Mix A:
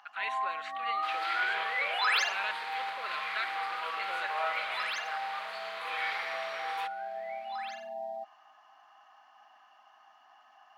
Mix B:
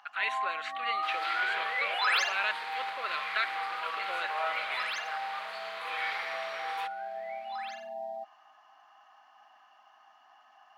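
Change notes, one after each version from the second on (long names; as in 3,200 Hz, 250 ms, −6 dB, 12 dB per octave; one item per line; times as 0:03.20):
speech +4.5 dB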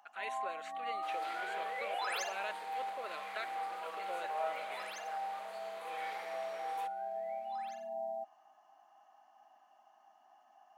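master: add flat-topped bell 2,300 Hz −12.5 dB 2.6 octaves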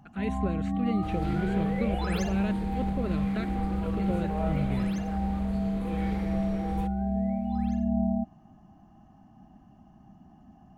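master: remove high-pass filter 660 Hz 24 dB per octave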